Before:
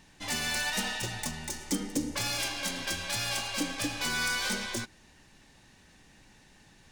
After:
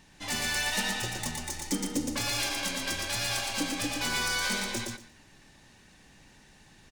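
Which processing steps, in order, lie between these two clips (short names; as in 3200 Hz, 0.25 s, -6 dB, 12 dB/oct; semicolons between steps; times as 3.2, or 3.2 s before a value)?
feedback echo 0.117 s, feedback 18%, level -3.5 dB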